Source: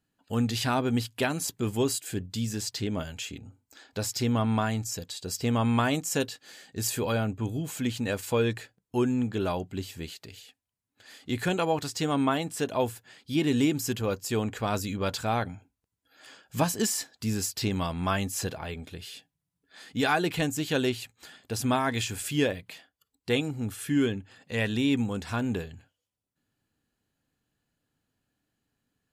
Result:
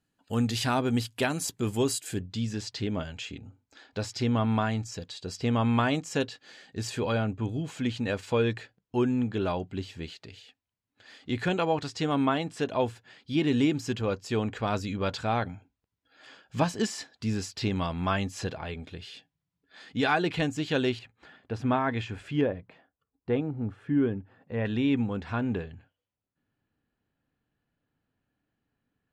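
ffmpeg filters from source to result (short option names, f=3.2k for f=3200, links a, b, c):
-af "asetnsamples=n=441:p=0,asendcmd='2.21 lowpass f 4600;20.99 lowpass f 2100;22.41 lowpass f 1200;24.65 lowpass f 2600',lowpass=12k"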